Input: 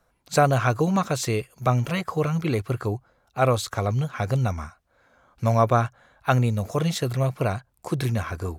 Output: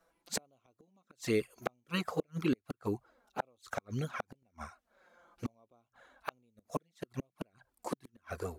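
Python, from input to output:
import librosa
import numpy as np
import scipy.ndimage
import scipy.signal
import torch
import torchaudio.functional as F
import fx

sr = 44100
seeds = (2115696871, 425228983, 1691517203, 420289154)

y = fx.env_flanger(x, sr, rest_ms=6.1, full_db=-18.0)
y = fx.gate_flip(y, sr, shuts_db=-17.0, range_db=-42)
y = fx.low_shelf_res(y, sr, hz=180.0, db=-9.5, q=1.5)
y = y * 10.0 ** (-2.0 / 20.0)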